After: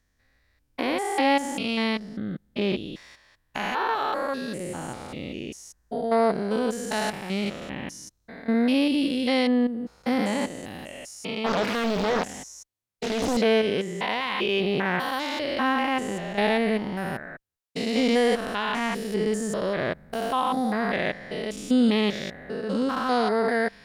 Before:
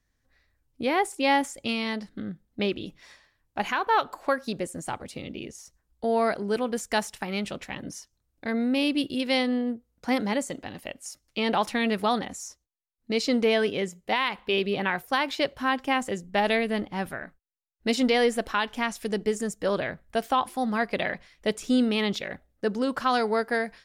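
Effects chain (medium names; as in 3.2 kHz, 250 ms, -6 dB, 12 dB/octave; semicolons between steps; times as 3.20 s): spectrogram pixelated in time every 200 ms; in parallel at 0 dB: peak limiter -21.5 dBFS, peak gain reduction 7.5 dB; on the sum: Chebyshev shaper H 7 -37 dB, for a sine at -10 dBFS; 11.46–13.37 s: loudspeaker Doppler distortion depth 0.88 ms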